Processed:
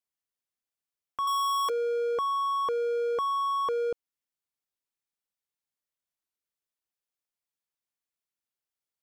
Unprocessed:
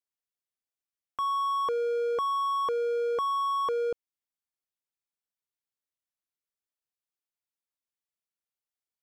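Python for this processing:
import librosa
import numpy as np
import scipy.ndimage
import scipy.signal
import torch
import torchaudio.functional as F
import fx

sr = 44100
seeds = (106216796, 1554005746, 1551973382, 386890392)

y = fx.tilt_eq(x, sr, slope=4.5, at=(1.27, 1.7))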